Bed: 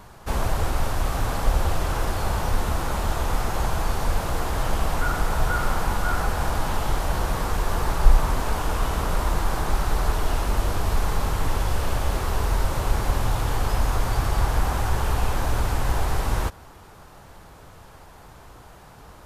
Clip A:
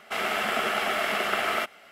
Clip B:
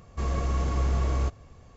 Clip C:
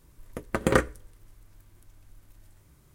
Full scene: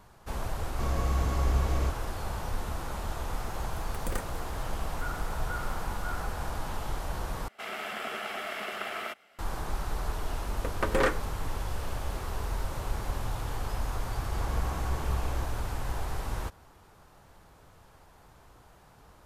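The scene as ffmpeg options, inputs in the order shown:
-filter_complex "[2:a]asplit=2[a][b];[3:a]asplit=2[c][d];[0:a]volume=-10dB[e];[c]aemphasis=mode=production:type=75fm[f];[d]asplit=2[g][h];[h]highpass=f=720:p=1,volume=25dB,asoftclip=type=tanh:threshold=-5dB[i];[g][i]amix=inputs=2:normalize=0,lowpass=f=2.5k:p=1,volume=-6dB[j];[e]asplit=2[k][l];[k]atrim=end=7.484[m];[1:a]atrim=end=1.91,asetpts=PTS-STARTPTS,volume=-9.5dB[n];[l]atrim=start=9.386[o];[a]atrim=end=1.76,asetpts=PTS-STARTPTS,volume=-2.5dB,afade=t=in:d=0.004:c=hsin,afade=t=out:st=1.756:d=0.004:c=hsin,adelay=610[p];[f]atrim=end=2.94,asetpts=PTS-STARTPTS,volume=-17.5dB,afade=t=in:d=0.004:c=hsin,afade=t=out:st=2.936:d=0.004:c=hsin,adelay=3400[q];[j]atrim=end=2.94,asetpts=PTS-STARTPTS,volume=-10dB,afade=t=in:d=0.004:c=hsin,afade=t=out:st=2.936:d=0.004:c=hsin,adelay=10280[r];[b]atrim=end=1.76,asetpts=PTS-STARTPTS,volume=-8.5dB,afade=t=in:d=0.004:c=hsin,afade=t=out:st=1.756:d=0.004:c=hsin,adelay=14150[s];[m][n]acrossfade=d=0.004:c1=hsin:c2=hsin[t];[t][o]acrossfade=d=0.004:c1=hsin:c2=hsin[u];[u][p][q][r][s]amix=inputs=5:normalize=0"

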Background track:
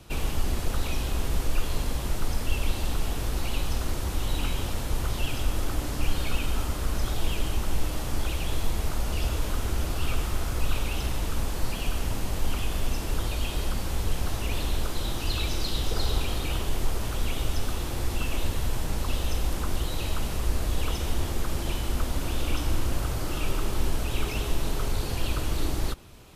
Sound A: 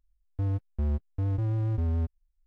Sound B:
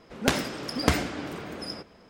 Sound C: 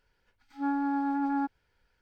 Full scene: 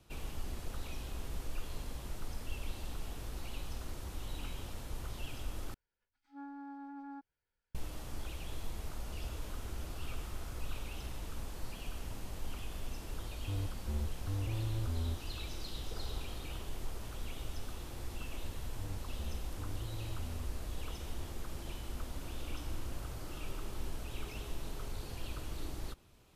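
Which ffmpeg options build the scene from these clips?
-filter_complex "[1:a]asplit=2[a][b];[0:a]volume=-14dB,asplit=2[c][d];[c]atrim=end=5.744[e];[3:a]atrim=end=2.01,asetpts=PTS-STARTPTS,volume=-18dB[f];[d]atrim=start=7.746[g];[a]atrim=end=2.46,asetpts=PTS-STARTPTS,volume=-9dB,afade=t=in:d=0.004:c=hsin,afade=t=out:st=2.456:d=0.004:c=hsin,adelay=13090[h];[b]atrim=end=2.46,asetpts=PTS-STARTPTS,volume=-16.5dB,afade=t=in:d=0.004:c=hsin,afade=t=out:st=2.456:d=0.004:c=hsin,adelay=18400[i];[e][f]acrossfade=d=0.004:c1=hsin:c2=hsin[j];[j][g]acrossfade=d=0.004:c1=hsin:c2=hsin[k];[k][h][i]amix=inputs=3:normalize=0"

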